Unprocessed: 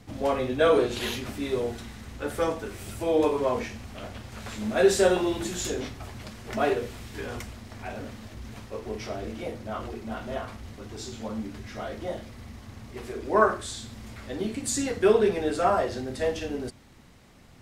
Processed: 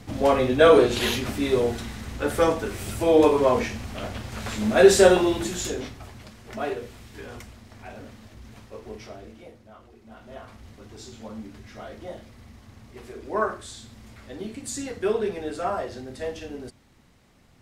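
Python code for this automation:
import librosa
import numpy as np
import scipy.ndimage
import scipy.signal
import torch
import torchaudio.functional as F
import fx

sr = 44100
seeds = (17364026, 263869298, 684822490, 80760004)

y = fx.gain(x, sr, db=fx.line((5.08, 6.0), (6.32, -4.5), (8.93, -4.5), (9.85, -16.5), (10.62, -4.5)))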